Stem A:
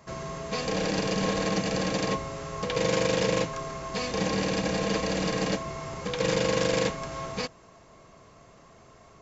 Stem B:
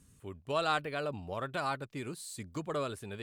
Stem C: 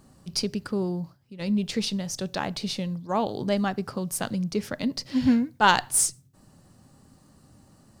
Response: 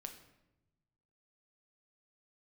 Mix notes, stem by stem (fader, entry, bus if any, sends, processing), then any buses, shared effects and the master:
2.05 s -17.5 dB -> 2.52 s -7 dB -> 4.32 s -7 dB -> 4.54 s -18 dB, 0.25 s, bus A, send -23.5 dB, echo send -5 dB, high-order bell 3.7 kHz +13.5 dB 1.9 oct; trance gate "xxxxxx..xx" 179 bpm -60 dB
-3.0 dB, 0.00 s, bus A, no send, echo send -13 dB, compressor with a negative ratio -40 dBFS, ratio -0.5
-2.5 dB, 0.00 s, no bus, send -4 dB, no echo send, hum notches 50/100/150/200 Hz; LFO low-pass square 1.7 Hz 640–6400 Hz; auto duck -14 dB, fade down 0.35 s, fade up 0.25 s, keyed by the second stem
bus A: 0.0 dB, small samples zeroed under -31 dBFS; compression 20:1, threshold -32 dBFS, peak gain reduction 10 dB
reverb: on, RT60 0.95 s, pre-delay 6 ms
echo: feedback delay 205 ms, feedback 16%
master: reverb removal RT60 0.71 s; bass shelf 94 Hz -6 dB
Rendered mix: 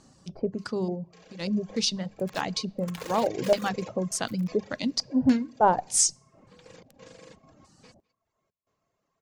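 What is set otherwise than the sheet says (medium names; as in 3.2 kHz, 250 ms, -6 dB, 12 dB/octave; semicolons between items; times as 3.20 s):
stem A: missing high-order bell 3.7 kHz +13.5 dB 1.9 oct; stem B: muted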